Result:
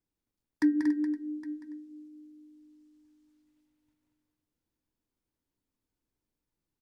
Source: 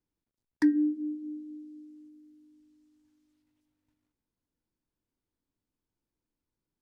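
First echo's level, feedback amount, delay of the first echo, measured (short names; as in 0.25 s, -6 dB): -6.5 dB, no steady repeat, 0.187 s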